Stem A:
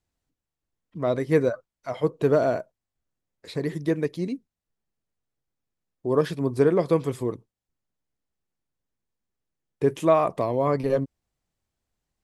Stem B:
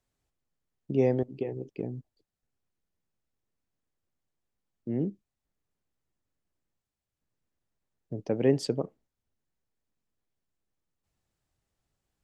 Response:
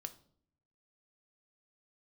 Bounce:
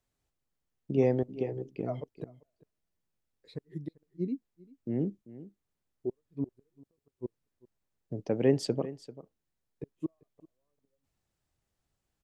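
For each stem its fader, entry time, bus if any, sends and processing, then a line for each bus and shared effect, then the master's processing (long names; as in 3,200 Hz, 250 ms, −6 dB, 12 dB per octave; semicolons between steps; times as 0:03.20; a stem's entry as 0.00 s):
−6.0 dB, 0.00 s, no send, echo send −23 dB, low-shelf EQ 150 Hz −2.5 dB; gate with flip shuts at −17 dBFS, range −40 dB; every bin expanded away from the loudest bin 1.5 to 1
−1.0 dB, 0.00 s, no send, echo send −16.5 dB, no processing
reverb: not used
echo: single-tap delay 392 ms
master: no processing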